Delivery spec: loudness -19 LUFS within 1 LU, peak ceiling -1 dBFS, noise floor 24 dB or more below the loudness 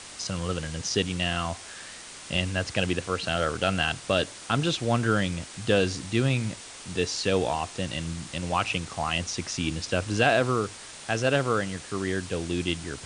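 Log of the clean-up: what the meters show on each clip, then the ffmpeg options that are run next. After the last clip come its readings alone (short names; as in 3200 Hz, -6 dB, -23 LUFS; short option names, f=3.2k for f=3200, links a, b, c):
noise floor -44 dBFS; noise floor target -52 dBFS; loudness -27.5 LUFS; peak -6.5 dBFS; loudness target -19.0 LUFS
-> -af "afftdn=nr=8:nf=-44"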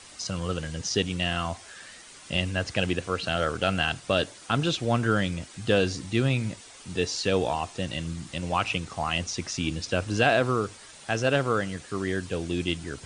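noise floor -48 dBFS; noise floor target -52 dBFS
-> -af "afftdn=nr=6:nf=-48"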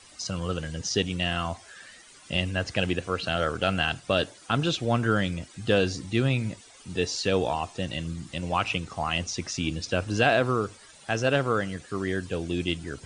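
noise floor -52 dBFS; loudness -27.5 LUFS; peak -7.0 dBFS; loudness target -19.0 LUFS
-> -af "volume=8.5dB,alimiter=limit=-1dB:level=0:latency=1"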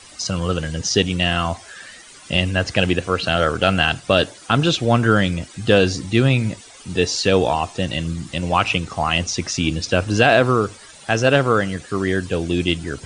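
loudness -19.0 LUFS; peak -1.0 dBFS; noise floor -43 dBFS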